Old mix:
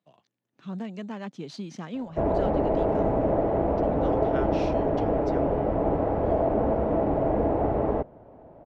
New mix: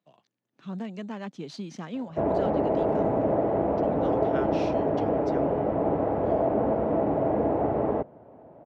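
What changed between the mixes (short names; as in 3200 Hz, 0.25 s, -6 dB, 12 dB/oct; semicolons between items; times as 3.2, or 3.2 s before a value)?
background: add air absorption 94 m; master: add HPF 110 Hz 12 dB/oct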